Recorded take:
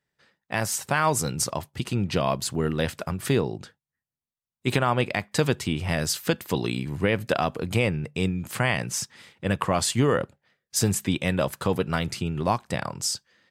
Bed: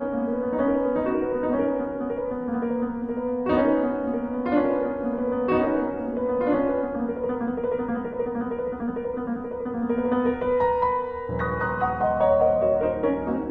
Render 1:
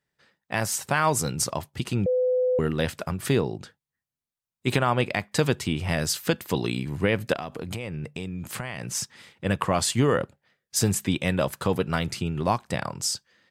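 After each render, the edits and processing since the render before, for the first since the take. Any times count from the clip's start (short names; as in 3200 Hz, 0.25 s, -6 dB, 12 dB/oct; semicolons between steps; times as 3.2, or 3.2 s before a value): 2.06–2.59 bleep 505 Hz -19.5 dBFS; 7.33–8.95 compressor 10:1, threshold -28 dBFS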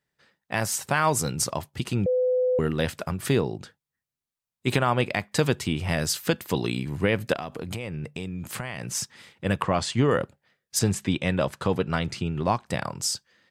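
9.62–10.11 air absorption 87 m; 10.79–12.67 air absorption 52 m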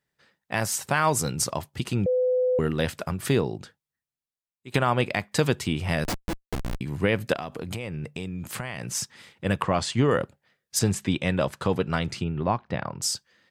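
3.54–4.74 fade out, to -21.5 dB; 6.04–6.81 Schmitt trigger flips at -21.5 dBFS; 12.24–13.02 air absorption 280 m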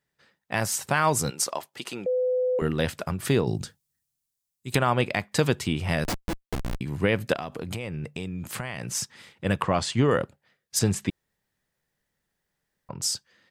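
1.3–2.62 HPF 420 Hz; 3.47–4.75 tone controls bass +10 dB, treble +13 dB; 11.1–12.89 room tone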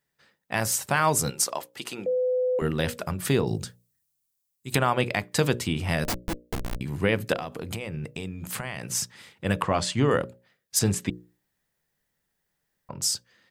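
high shelf 11000 Hz +7 dB; notches 60/120/180/240/300/360/420/480/540/600 Hz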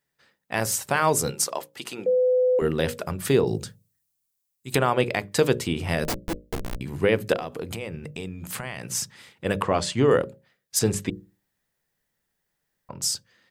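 notches 50/100/150/200 Hz; dynamic EQ 430 Hz, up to +6 dB, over -40 dBFS, Q 1.8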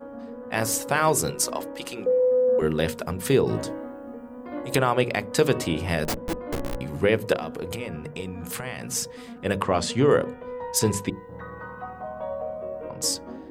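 add bed -12.5 dB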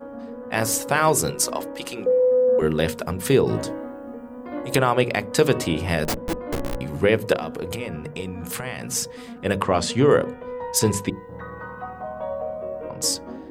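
gain +2.5 dB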